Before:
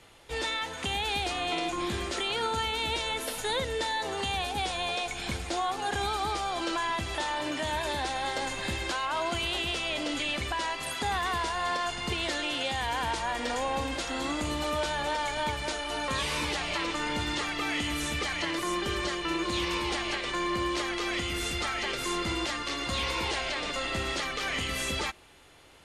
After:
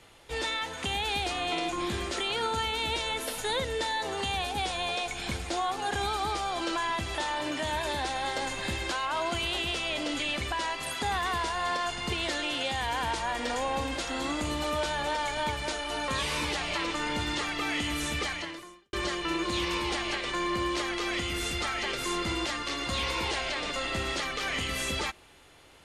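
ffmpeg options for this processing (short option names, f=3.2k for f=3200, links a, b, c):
-filter_complex "[0:a]asplit=2[a][b];[a]atrim=end=18.93,asetpts=PTS-STARTPTS,afade=t=out:st=18.26:d=0.67:c=qua[c];[b]atrim=start=18.93,asetpts=PTS-STARTPTS,afade=t=in:d=0.004:c=hsin[d];[c][d]concat=n=2:v=0:a=1"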